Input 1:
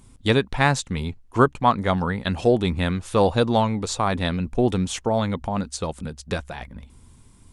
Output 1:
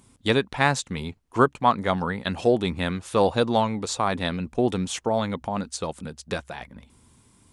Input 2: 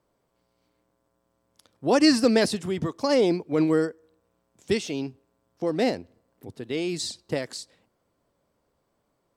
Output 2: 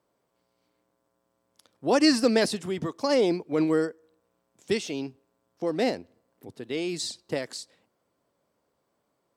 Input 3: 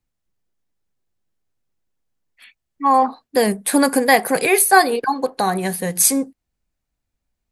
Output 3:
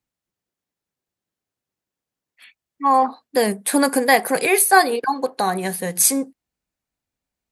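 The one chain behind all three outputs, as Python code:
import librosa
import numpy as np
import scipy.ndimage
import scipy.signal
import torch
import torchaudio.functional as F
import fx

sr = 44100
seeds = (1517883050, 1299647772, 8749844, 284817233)

y = fx.highpass(x, sr, hz=170.0, slope=6)
y = F.gain(torch.from_numpy(y), -1.0).numpy()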